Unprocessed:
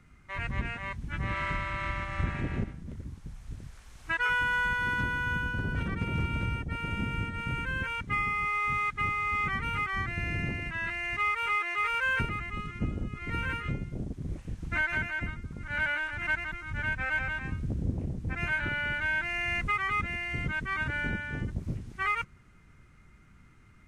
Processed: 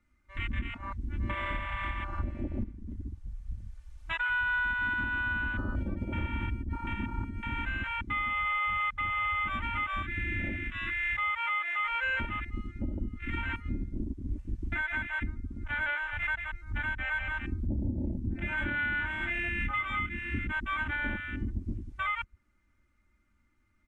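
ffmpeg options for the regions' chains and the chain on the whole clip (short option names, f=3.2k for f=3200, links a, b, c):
-filter_complex "[0:a]asettb=1/sr,asplit=3[a][b][c];[a]atrim=end=17.664[d];[b]atrim=start=17.66:end=20.39,asetpts=PTS-STARTPTS,afade=t=in:d=0.004:c=qsin,afade=t=out:st=2.726:d=0.004:c=qsin,equalizer=f=170:w=0.61:g=7,asplit=2[e][f];[f]adelay=28,volume=-7.5dB[g];[e][g]amix=inputs=2:normalize=0,atrim=end_sample=120393,acrossover=split=1200[h][i];[i]adelay=50[j];[h][j]amix=inputs=2:normalize=0,atrim=end_sample=120393[k];[c]atrim=start=20.386[l];[d][k]acrossfade=d=0.004:c1=hsin:c2=qsin[m];[m][l]acrossfade=d=0.004:c1=qsin:c2=hsin,afwtdn=0.0224,aecho=1:1:3.4:0.9,alimiter=limit=-23dB:level=0:latency=1:release=308"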